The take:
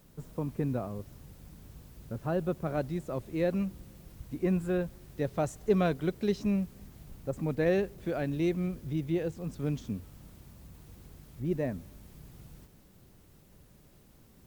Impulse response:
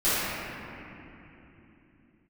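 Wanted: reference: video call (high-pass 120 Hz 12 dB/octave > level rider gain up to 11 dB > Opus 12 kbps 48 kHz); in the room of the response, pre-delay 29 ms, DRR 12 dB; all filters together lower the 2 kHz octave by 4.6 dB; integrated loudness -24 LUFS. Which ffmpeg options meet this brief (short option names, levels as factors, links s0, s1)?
-filter_complex "[0:a]equalizer=f=2000:t=o:g=-6,asplit=2[s0][s1];[1:a]atrim=start_sample=2205,adelay=29[s2];[s1][s2]afir=irnorm=-1:irlink=0,volume=0.0376[s3];[s0][s3]amix=inputs=2:normalize=0,highpass=120,dynaudnorm=m=3.55,volume=2.99" -ar 48000 -c:a libopus -b:a 12k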